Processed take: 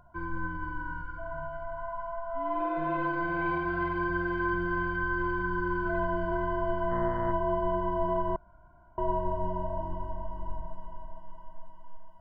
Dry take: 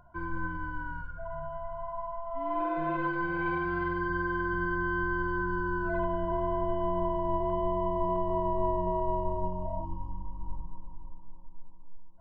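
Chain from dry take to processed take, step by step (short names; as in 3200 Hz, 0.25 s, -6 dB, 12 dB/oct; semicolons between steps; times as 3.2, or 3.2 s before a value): thinning echo 0.46 s, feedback 76%, high-pass 580 Hz, level -7 dB; 6.9–7.31 buzz 120 Hz, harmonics 17, -39 dBFS -4 dB/oct; 8.36–8.98 room tone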